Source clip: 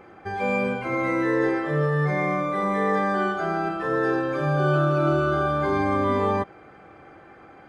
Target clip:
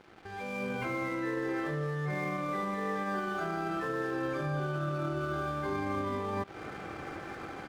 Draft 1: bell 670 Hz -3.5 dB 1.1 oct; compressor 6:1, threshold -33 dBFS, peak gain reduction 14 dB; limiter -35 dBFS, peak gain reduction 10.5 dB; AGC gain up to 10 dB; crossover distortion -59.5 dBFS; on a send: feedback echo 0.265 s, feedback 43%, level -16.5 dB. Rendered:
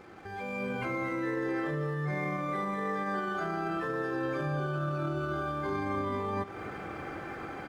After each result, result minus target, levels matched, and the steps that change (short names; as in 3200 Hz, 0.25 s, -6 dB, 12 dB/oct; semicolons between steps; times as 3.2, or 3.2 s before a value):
echo-to-direct +11 dB; crossover distortion: distortion -10 dB
change: feedback echo 0.265 s, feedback 43%, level -27.5 dB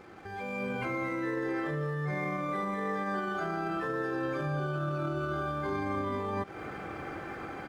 crossover distortion: distortion -10 dB
change: crossover distortion -49.5 dBFS